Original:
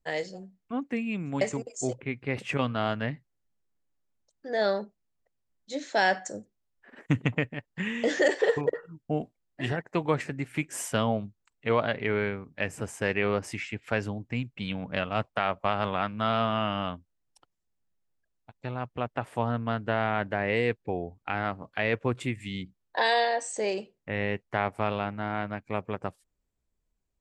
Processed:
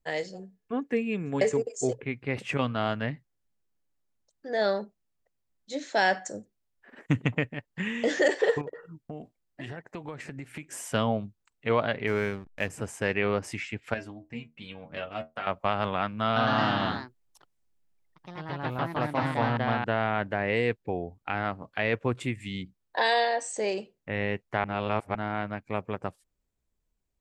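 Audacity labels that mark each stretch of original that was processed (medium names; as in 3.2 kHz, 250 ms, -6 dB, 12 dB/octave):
0.390000	2.040000	small resonant body resonances 440/1700 Hz, height 13 dB, ringing for 65 ms
8.610000	10.930000	compression, threshold -35 dBFS
12.070000	12.700000	hysteresis with a dead band play -38 dBFS
13.940000	15.470000	inharmonic resonator 76 Hz, decay 0.22 s, inharmonicity 0.002
16.250000	20.160000	ever faster or slower copies 110 ms, each echo +2 st, echoes 3
24.640000	25.150000	reverse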